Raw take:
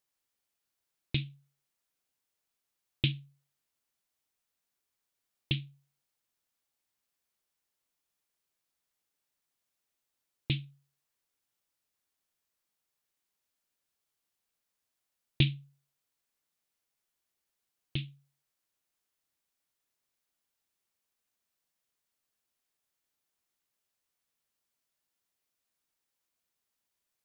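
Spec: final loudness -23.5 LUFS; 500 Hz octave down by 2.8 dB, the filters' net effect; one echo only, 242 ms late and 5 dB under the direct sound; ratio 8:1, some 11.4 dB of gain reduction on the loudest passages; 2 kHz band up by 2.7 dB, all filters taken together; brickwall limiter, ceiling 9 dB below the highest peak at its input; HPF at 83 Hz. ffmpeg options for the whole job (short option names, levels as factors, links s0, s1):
-af "highpass=83,equalizer=f=500:t=o:g=-5,equalizer=f=2000:t=o:g=4,acompressor=threshold=0.0251:ratio=8,alimiter=level_in=1.26:limit=0.0631:level=0:latency=1,volume=0.794,aecho=1:1:242:0.562,volume=15"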